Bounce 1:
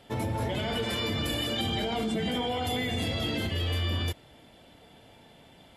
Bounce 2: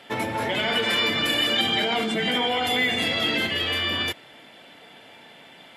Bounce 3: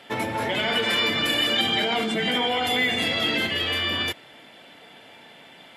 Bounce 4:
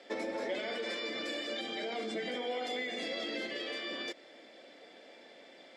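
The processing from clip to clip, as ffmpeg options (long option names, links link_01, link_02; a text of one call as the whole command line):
ffmpeg -i in.wav -af "highpass=190,equalizer=frequency=2000:width=0.69:gain=9.5,volume=3.5dB" out.wav
ffmpeg -i in.wav -af "asoftclip=type=hard:threshold=-12dB" out.wav
ffmpeg -i in.wav -af "acompressor=threshold=-27dB:ratio=6,highpass=frequency=230:width=0.5412,highpass=frequency=230:width=1.3066,equalizer=frequency=340:width_type=q:width=4:gain=4,equalizer=frequency=540:width_type=q:width=4:gain=8,equalizer=frequency=930:width_type=q:width=4:gain=-8,equalizer=frequency=1400:width_type=q:width=4:gain=-5,equalizer=frequency=2900:width_type=q:width=4:gain=-9,equalizer=frequency=5100:width_type=q:width=4:gain=6,lowpass=frequency=8000:width=0.5412,lowpass=frequency=8000:width=1.3066,volume=-6.5dB" out.wav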